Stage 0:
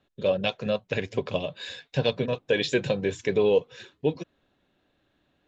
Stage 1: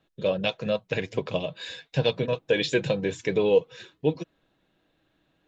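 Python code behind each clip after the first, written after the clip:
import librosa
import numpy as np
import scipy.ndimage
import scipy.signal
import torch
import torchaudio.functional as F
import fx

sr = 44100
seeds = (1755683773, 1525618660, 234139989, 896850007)

y = x + 0.32 * np.pad(x, (int(6.2 * sr / 1000.0), 0))[:len(x)]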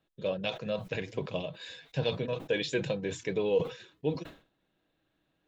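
y = fx.sustainer(x, sr, db_per_s=140.0)
y = F.gain(torch.from_numpy(y), -7.0).numpy()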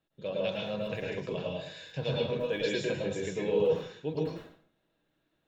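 y = fx.rev_plate(x, sr, seeds[0], rt60_s=0.53, hf_ratio=0.8, predelay_ms=95, drr_db=-3.0)
y = F.gain(torch.from_numpy(y), -4.5).numpy()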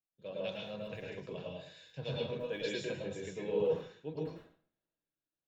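y = fx.band_widen(x, sr, depth_pct=40)
y = F.gain(torch.from_numpy(y), -7.0).numpy()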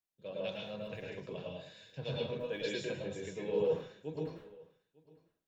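y = x + 10.0 ** (-23.5 / 20.0) * np.pad(x, (int(900 * sr / 1000.0), 0))[:len(x)]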